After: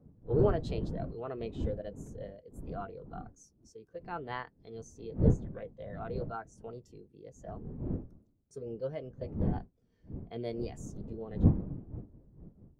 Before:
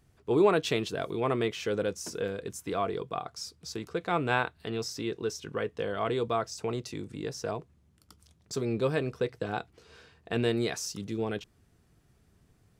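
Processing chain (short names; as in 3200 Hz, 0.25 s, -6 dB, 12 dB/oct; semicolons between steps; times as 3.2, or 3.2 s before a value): wind noise 210 Hz -30 dBFS; formant shift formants +3 st; spectral expander 1.5:1; gain -5 dB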